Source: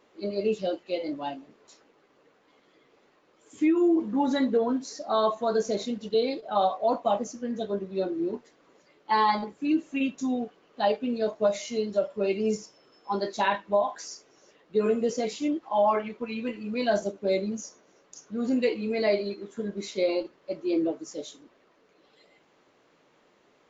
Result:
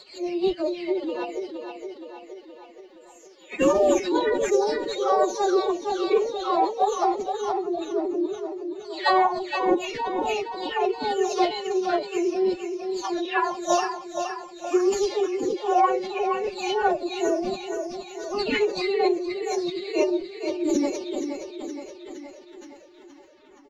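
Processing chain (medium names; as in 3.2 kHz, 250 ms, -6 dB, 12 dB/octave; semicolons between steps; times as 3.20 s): delay that grows with frequency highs early, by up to 430 ms; feedback delay 470 ms, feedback 57%, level -7 dB; formant-preserving pitch shift +9.5 st; trim +3.5 dB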